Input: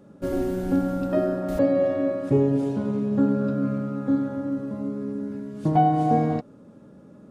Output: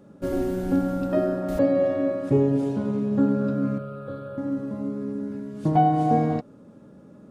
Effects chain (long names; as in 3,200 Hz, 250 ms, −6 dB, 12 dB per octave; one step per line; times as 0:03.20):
0:03.78–0:04.38: phaser with its sweep stopped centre 1,300 Hz, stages 8